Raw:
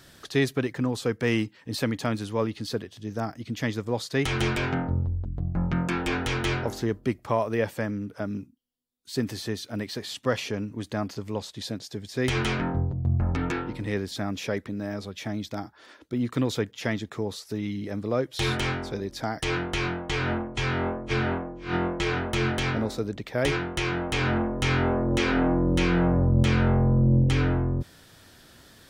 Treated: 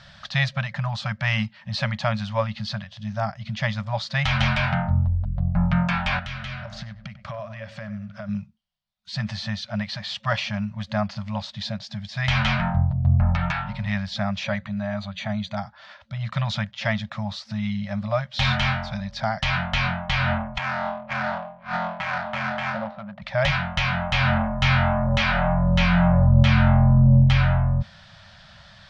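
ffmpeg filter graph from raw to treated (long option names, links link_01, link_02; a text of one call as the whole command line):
ffmpeg -i in.wav -filter_complex "[0:a]asettb=1/sr,asplit=3[link_01][link_02][link_03];[link_01]atrim=end=6.194[link_04];[link_02]atrim=start=6.19:end=8.29,asetpts=PTS-STARTPTS,afade=type=in:duration=0.004:curve=qsin,afade=type=out:start_time=2.096:duration=0.004:curve=qsin,equalizer=frequency=870:width=5.3:gain=-14.5,acompressor=threshold=-35dB:ratio=5:attack=3.2:release=140:knee=1:detection=peak,asplit=2[link_05][link_06];[link_06]adelay=96,lowpass=frequency=2200:poles=1,volume=-12dB,asplit=2[link_07][link_08];[link_08]adelay=96,lowpass=frequency=2200:poles=1,volume=0.38,asplit=2[link_09][link_10];[link_10]adelay=96,lowpass=frequency=2200:poles=1,volume=0.38,asplit=2[link_11][link_12];[link_12]adelay=96,lowpass=frequency=2200:poles=1,volume=0.38[link_13];[link_05][link_07][link_09][link_11][link_13]amix=inputs=5:normalize=0,atrim=end_sample=92610[link_14];[link_03]atrim=start=8.286[link_15];[link_04][link_14]acrossfade=duration=0.004:curve1=hsin:curve2=qsin[link_16];[link_16][link_15]acrossfade=duration=0.004:curve1=qsin:curve2=hsin,asettb=1/sr,asplit=3[link_17][link_18][link_19];[link_17]atrim=end=14.444[link_20];[link_18]atrim=start=14.44:end=15.57,asetpts=PTS-STARTPTS,afade=type=in:duration=0.004:curve=qsin,afade=type=out:start_time=1.126:duration=0.004:curve=qsin,asuperstop=centerf=5300:order=20:qfactor=6.3,bandreject=frequency=60:width_type=h:width=6,bandreject=frequency=120:width_type=h:width=6,bandreject=frequency=180:width_type=h:width=6,bandreject=frequency=240:width_type=h:width=6,bandreject=frequency=300:width_type=h:width=6,bandreject=frequency=360:width_type=h:width=6,bandreject=frequency=420:width_type=h:width=6,bandreject=frequency=480:width_type=h:width=6,bandreject=frequency=540:width_type=h:width=6[link_21];[link_19]atrim=start=15.566[link_22];[link_20][link_21]acrossfade=duration=0.004:curve1=hsin:curve2=qsin[link_23];[link_23][link_22]acrossfade=duration=0.004:curve1=qsin:curve2=hsin,asettb=1/sr,asplit=3[link_24][link_25][link_26];[link_24]atrim=end=20.584[link_27];[link_25]atrim=start=20.58:end=23.22,asetpts=PTS-STARTPTS,afade=type=in:duration=0.004:curve=qsin,afade=type=out:start_time=2.636:duration=0.004:curve=qsin,highpass=280,lowpass=2200,adynamicsmooth=sensitivity=5:basefreq=940[link_28];[link_26]atrim=start=23.216[link_29];[link_27][link_28]acrossfade=duration=0.004:curve1=hsin:curve2=qsin[link_30];[link_30][link_29]acrossfade=duration=0.004:curve1=qsin:curve2=hsin,lowpass=frequency=4900:width=0.5412,lowpass=frequency=4900:width=1.3066,afftfilt=real='re*(1-between(b*sr/4096,220,540))':imag='im*(1-between(b*sr/4096,220,540))':win_size=4096:overlap=0.75,volume=6dB" out.wav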